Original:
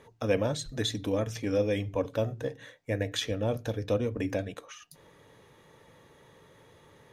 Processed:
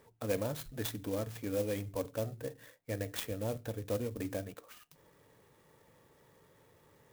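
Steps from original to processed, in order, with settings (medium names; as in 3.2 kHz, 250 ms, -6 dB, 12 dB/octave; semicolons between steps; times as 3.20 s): sampling jitter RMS 0.054 ms; trim -7 dB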